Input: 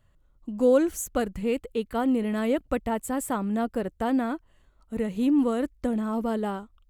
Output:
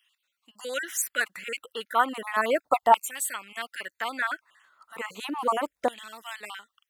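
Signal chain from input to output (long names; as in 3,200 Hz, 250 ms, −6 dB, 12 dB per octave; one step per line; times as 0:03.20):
time-frequency cells dropped at random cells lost 33%
low-shelf EQ 280 Hz +10.5 dB
auto-filter high-pass saw down 0.34 Hz 800–2,900 Hz
level +7 dB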